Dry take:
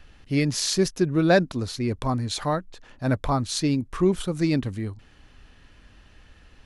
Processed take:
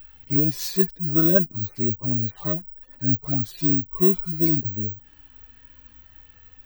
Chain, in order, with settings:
harmonic-percussive split with one part muted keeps harmonic
bad sample-rate conversion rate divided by 2×, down filtered, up zero stuff

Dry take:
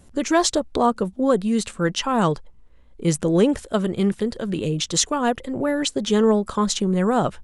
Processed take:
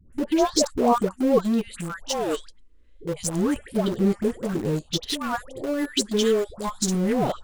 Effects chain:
all-pass phaser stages 4, 0.29 Hz, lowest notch 120–3,900 Hz
dynamic equaliser 120 Hz, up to −3 dB, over −35 dBFS, Q 0.79
all-pass dispersion highs, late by 128 ms, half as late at 860 Hz
in parallel at −6 dB: centre clipping without the shift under −23 dBFS
on the sum: level −3.5 dB

